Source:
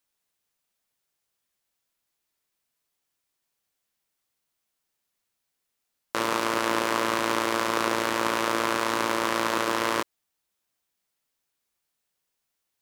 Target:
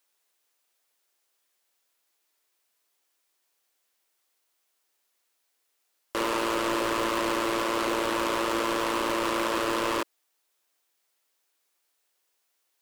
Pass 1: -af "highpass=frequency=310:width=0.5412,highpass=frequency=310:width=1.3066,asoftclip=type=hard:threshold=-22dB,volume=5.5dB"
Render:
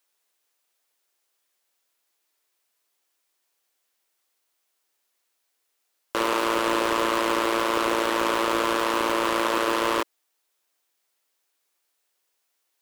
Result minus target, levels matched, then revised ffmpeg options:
hard clipping: distortion −4 dB
-af "highpass=frequency=310:width=0.5412,highpass=frequency=310:width=1.3066,asoftclip=type=hard:threshold=-28.5dB,volume=5.5dB"

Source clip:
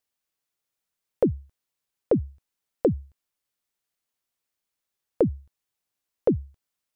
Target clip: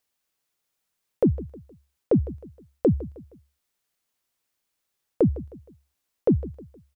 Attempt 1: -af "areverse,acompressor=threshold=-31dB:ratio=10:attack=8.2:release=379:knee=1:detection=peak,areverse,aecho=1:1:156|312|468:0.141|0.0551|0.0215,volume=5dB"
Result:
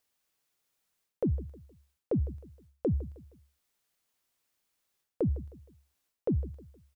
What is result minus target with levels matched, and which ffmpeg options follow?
downward compressor: peak gain reduction +10 dB
-af "areverse,acompressor=threshold=-20dB:ratio=10:attack=8.2:release=379:knee=1:detection=peak,areverse,aecho=1:1:156|312|468:0.141|0.0551|0.0215,volume=5dB"

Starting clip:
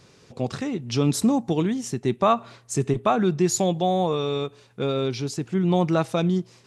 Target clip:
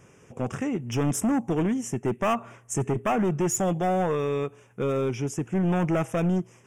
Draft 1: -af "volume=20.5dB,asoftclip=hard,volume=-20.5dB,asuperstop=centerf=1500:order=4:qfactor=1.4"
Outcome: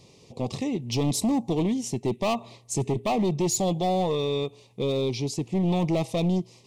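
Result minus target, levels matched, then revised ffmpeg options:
4,000 Hz band +9.5 dB
-af "volume=20.5dB,asoftclip=hard,volume=-20.5dB,asuperstop=centerf=4200:order=4:qfactor=1.4"

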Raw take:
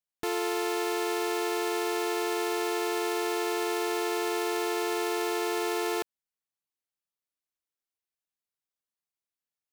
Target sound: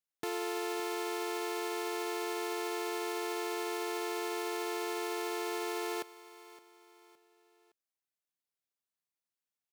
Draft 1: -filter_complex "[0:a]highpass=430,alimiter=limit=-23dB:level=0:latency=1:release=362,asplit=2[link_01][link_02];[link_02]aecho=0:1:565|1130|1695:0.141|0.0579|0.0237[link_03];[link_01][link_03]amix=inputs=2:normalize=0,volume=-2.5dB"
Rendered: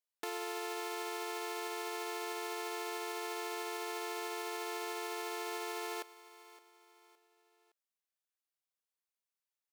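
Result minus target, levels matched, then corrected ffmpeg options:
125 Hz band −13.0 dB
-filter_complex "[0:a]highpass=110,alimiter=limit=-23dB:level=0:latency=1:release=362,asplit=2[link_01][link_02];[link_02]aecho=0:1:565|1130|1695:0.141|0.0579|0.0237[link_03];[link_01][link_03]amix=inputs=2:normalize=0,volume=-2.5dB"

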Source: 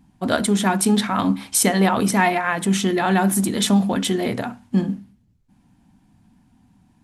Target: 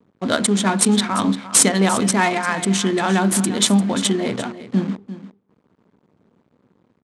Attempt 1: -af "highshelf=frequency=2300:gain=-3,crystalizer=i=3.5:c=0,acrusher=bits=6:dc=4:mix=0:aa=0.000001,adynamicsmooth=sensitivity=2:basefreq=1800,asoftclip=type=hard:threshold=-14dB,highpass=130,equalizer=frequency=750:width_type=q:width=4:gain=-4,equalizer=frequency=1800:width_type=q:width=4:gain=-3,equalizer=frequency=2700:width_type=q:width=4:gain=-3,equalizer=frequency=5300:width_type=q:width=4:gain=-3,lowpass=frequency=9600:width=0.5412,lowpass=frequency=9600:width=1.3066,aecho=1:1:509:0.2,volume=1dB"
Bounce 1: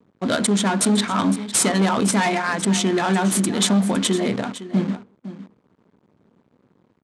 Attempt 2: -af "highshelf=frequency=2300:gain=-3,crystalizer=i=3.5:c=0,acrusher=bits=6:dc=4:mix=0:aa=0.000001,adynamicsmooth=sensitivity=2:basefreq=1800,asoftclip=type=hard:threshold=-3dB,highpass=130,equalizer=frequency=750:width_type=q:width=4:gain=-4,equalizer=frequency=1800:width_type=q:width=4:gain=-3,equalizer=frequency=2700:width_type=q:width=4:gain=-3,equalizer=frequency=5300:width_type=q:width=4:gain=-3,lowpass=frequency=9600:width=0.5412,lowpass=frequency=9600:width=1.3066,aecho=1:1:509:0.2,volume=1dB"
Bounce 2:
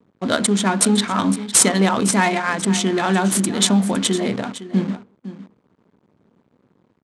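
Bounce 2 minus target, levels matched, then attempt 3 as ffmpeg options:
echo 162 ms late
-af "highshelf=frequency=2300:gain=-3,crystalizer=i=3.5:c=0,acrusher=bits=6:dc=4:mix=0:aa=0.000001,adynamicsmooth=sensitivity=2:basefreq=1800,asoftclip=type=hard:threshold=-3dB,highpass=130,equalizer=frequency=750:width_type=q:width=4:gain=-4,equalizer=frequency=1800:width_type=q:width=4:gain=-3,equalizer=frequency=2700:width_type=q:width=4:gain=-3,equalizer=frequency=5300:width_type=q:width=4:gain=-3,lowpass=frequency=9600:width=0.5412,lowpass=frequency=9600:width=1.3066,aecho=1:1:347:0.2,volume=1dB"

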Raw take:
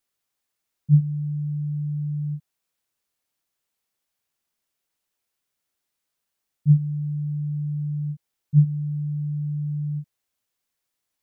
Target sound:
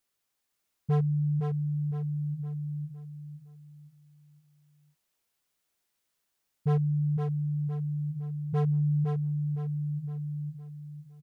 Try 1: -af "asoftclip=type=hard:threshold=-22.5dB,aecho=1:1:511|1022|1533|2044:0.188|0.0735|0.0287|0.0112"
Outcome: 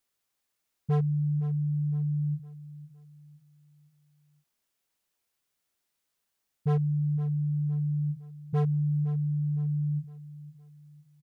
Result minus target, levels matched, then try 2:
echo-to-direct −10 dB
-af "asoftclip=type=hard:threshold=-22.5dB,aecho=1:1:511|1022|1533|2044|2555:0.596|0.232|0.0906|0.0353|0.0138"

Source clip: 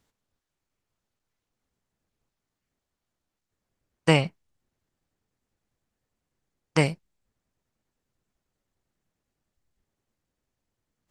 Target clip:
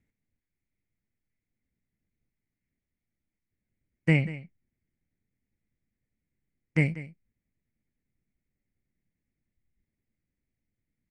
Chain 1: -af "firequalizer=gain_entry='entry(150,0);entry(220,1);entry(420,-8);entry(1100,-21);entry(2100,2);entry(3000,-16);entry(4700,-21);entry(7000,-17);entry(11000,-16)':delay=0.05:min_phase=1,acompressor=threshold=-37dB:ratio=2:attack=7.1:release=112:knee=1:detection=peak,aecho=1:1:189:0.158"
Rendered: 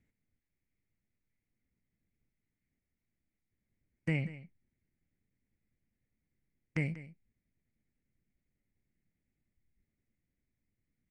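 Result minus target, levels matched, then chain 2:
downward compressor: peak gain reduction +11 dB
-af "firequalizer=gain_entry='entry(150,0);entry(220,1);entry(420,-8);entry(1100,-21);entry(2100,2);entry(3000,-16);entry(4700,-21);entry(7000,-17);entry(11000,-16)':delay=0.05:min_phase=1,aecho=1:1:189:0.158"

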